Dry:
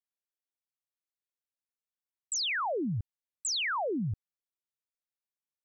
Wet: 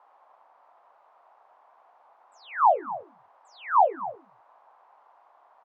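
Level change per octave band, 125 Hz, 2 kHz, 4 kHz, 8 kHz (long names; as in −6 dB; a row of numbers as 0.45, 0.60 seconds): below −25 dB, −4.0 dB, below −20 dB, below −30 dB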